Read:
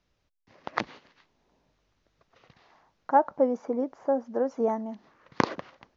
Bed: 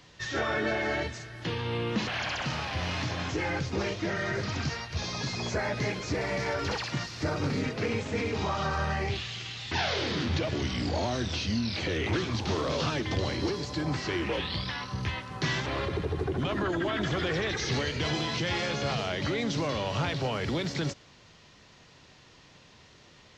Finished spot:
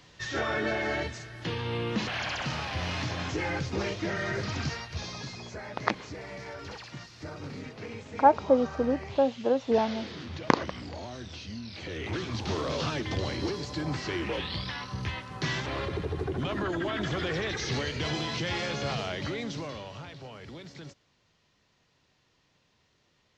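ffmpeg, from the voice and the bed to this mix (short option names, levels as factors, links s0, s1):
-filter_complex "[0:a]adelay=5100,volume=1.19[s0];[1:a]volume=2.66,afade=t=out:st=4.67:d=0.81:silence=0.316228,afade=t=in:st=11.71:d=0.8:silence=0.354813,afade=t=out:st=19:d=1.02:silence=0.237137[s1];[s0][s1]amix=inputs=2:normalize=0"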